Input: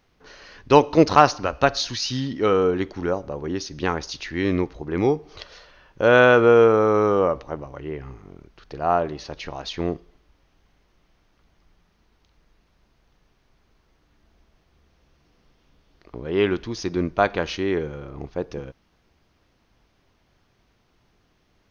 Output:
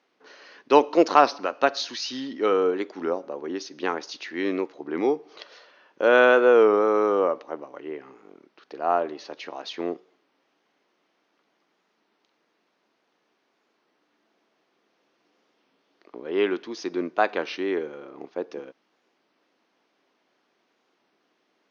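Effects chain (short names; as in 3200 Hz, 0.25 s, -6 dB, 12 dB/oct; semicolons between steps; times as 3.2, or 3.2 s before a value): HPF 260 Hz 24 dB/oct; air absorption 64 m; record warp 33 1/3 rpm, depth 100 cents; gain -2 dB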